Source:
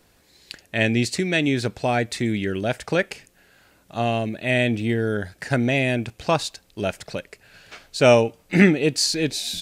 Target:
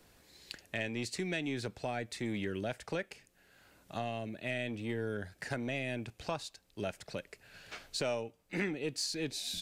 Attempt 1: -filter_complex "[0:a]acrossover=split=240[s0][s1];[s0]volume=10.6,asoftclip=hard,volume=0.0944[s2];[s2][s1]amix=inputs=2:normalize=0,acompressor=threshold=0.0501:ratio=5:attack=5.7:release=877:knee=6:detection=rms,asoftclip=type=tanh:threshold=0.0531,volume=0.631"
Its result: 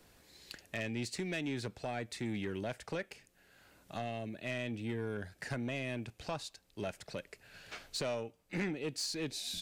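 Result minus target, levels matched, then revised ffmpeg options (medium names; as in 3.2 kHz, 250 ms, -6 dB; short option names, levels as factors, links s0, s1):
saturation: distortion +12 dB; overload inside the chain: distortion -6 dB
-filter_complex "[0:a]acrossover=split=240[s0][s1];[s0]volume=25.1,asoftclip=hard,volume=0.0398[s2];[s2][s1]amix=inputs=2:normalize=0,acompressor=threshold=0.0501:ratio=5:attack=5.7:release=877:knee=6:detection=rms,asoftclip=type=tanh:threshold=0.133,volume=0.631"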